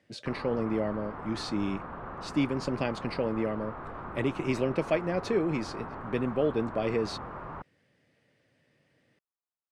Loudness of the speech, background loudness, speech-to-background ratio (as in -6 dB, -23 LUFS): -31.5 LUFS, -41.0 LUFS, 9.5 dB